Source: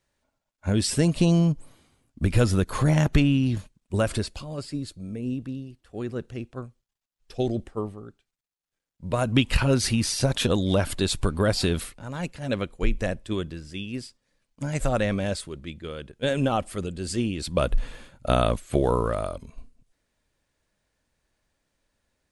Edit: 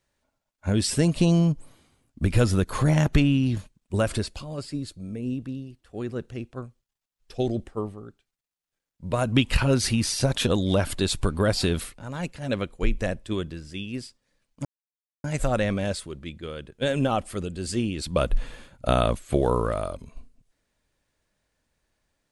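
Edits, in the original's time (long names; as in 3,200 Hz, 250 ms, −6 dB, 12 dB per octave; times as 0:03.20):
0:14.65: splice in silence 0.59 s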